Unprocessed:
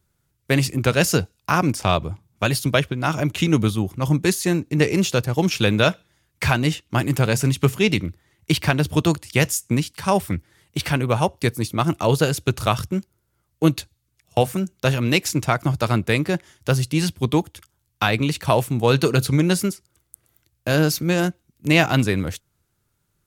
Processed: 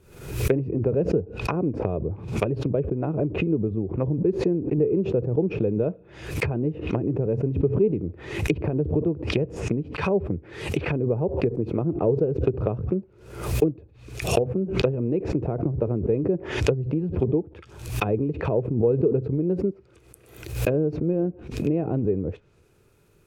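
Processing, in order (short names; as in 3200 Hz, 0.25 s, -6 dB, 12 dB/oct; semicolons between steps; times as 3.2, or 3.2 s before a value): G.711 law mismatch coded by mu; high shelf 3300 Hz -6 dB; treble ducked by the level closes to 430 Hz, closed at -18.5 dBFS; compressor 4:1, threshold -26 dBFS, peak gain reduction 12.5 dB; small resonant body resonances 430/2500 Hz, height 13 dB, ringing for 20 ms; backwards sustainer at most 82 dB/s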